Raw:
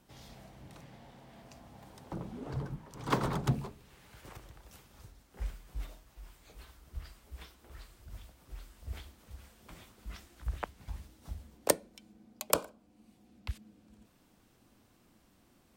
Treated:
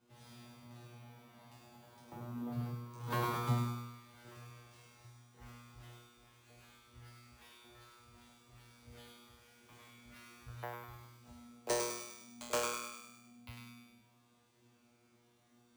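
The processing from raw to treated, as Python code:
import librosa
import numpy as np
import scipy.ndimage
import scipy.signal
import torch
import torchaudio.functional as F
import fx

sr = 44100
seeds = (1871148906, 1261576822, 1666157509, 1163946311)

y = scipy.signal.sosfilt(scipy.signal.butter(2, 65.0, 'highpass', fs=sr, output='sos'), x)
y = fx.high_shelf(y, sr, hz=9900.0, db=-5.5)
y = fx.notch(y, sr, hz=5400.0, q=20.0)
y = fx.comb_fb(y, sr, f0_hz=120.0, decay_s=0.89, harmonics='all', damping=0.0, mix_pct=100)
y = np.repeat(y[::3], 3)[:len(y)]
y = fx.echo_thinned(y, sr, ms=101, feedback_pct=55, hz=600.0, wet_db=-3.0)
y = F.gain(torch.from_numpy(y), 11.5).numpy()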